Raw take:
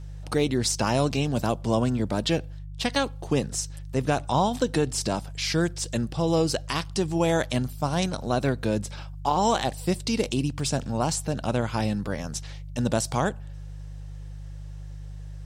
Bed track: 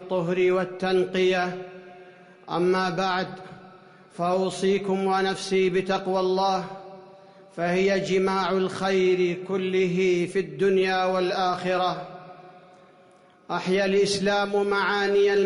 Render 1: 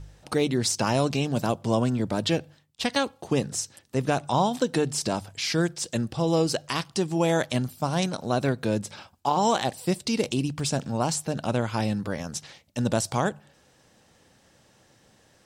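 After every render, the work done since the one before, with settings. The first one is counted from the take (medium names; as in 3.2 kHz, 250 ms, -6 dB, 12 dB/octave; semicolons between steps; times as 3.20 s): de-hum 50 Hz, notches 3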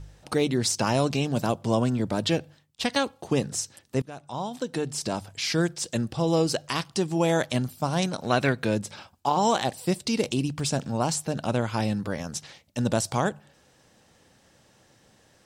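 4.02–5.44 s: fade in, from -21 dB; 8.23–8.74 s: peaking EQ 2.1 kHz +15 dB -> +4 dB 1.4 oct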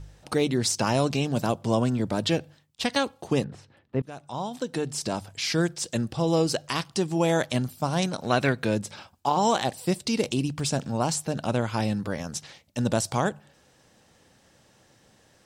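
3.44–4.03 s: distance through air 460 m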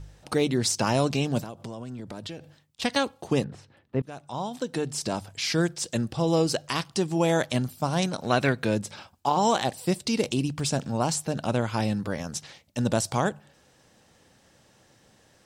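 1.41–2.82 s: compression 16:1, threshold -33 dBFS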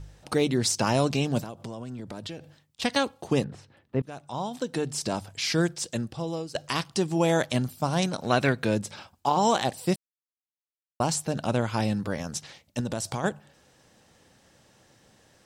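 5.70–6.55 s: fade out, to -18 dB; 9.96–11.00 s: mute; 12.80–13.24 s: compression, threshold -26 dBFS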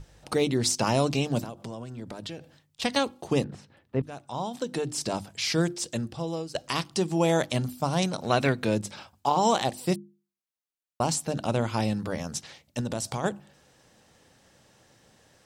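hum notches 50/100/150/200/250/300/350 Hz; dynamic bell 1.6 kHz, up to -4 dB, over -48 dBFS, Q 4.4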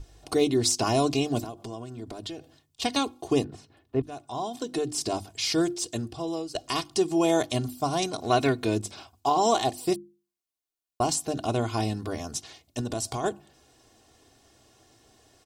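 peaking EQ 1.8 kHz -6 dB 1 oct; comb 2.8 ms, depth 70%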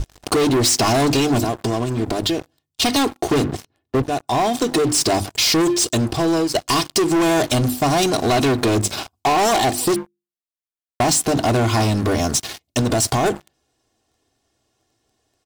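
waveshaping leveller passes 5; compression, threshold -15 dBFS, peak gain reduction 3.5 dB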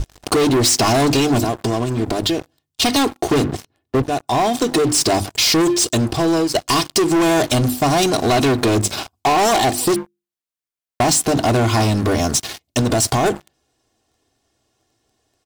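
trim +1.5 dB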